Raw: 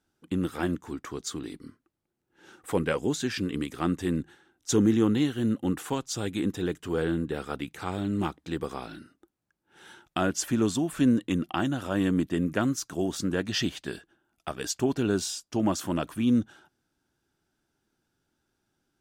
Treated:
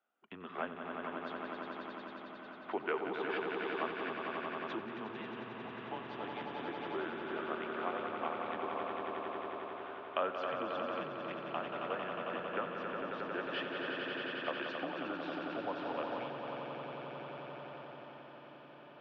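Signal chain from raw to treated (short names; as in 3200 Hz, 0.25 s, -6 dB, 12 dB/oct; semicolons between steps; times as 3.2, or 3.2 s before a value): high shelf 2400 Hz -8 dB; swelling echo 90 ms, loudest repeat 5, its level -6.5 dB; compressor, threshold -24 dBFS, peak gain reduction 9.5 dB; diffused feedback echo 1.837 s, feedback 50%, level -13.5 dB; mistuned SSB -100 Hz 540–3300 Hz; gain -1 dB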